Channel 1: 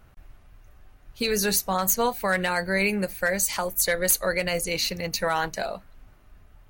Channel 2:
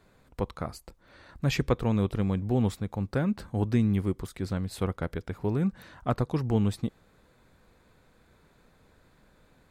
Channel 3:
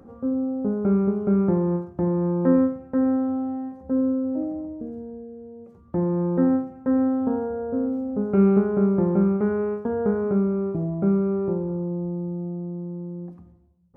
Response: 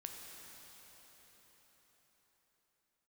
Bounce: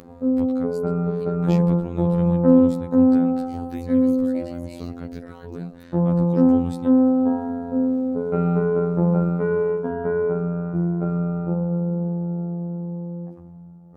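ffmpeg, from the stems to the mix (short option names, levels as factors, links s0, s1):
-filter_complex "[0:a]acrossover=split=4000[s0][s1];[s1]acompressor=threshold=0.0224:ratio=4:attack=1:release=60[s2];[s0][s2]amix=inputs=2:normalize=0,volume=0.106,asplit=3[s3][s4][s5];[s3]atrim=end=1.24,asetpts=PTS-STARTPTS,afade=t=out:st=1.236:d=0.004:c=hsin[s6];[s4]atrim=start=1.24:end=3.47,asetpts=PTS-STARTPTS,volume=0[s7];[s5]atrim=start=3.47,asetpts=PTS-STARTPTS,afade=t=in:d=0.004:c=hsin[s8];[s6][s7][s8]concat=n=3:v=0:a=1,asplit=2[s9][s10];[1:a]acrossover=split=370[s11][s12];[s12]acompressor=threshold=0.0158:ratio=6[s13];[s11][s13]amix=inputs=2:normalize=0,volume=1.06,asplit=2[s14][s15];[s15]volume=0.0891[s16];[2:a]bandreject=f=50:t=h:w=6,bandreject=f=100:t=h:w=6,bandreject=f=150:t=h:w=6,bandreject=f=200:t=h:w=6,bandreject=f=250:t=h:w=6,bandreject=f=300:t=h:w=6,bandreject=f=350:t=h:w=6,volume=1.33,asplit=2[s17][s18];[s18]volume=0.668[s19];[s10]apad=whole_len=428188[s20];[s14][s20]sidechaincompress=threshold=0.00282:ratio=8:attack=34:release=139[s21];[3:a]atrim=start_sample=2205[s22];[s16][s19]amix=inputs=2:normalize=0[s23];[s23][s22]afir=irnorm=-1:irlink=0[s24];[s9][s21][s17][s24]amix=inputs=4:normalize=0,acompressor=mode=upward:threshold=0.01:ratio=2.5,afftfilt=real='hypot(re,im)*cos(PI*b)':imag='0':win_size=2048:overlap=0.75"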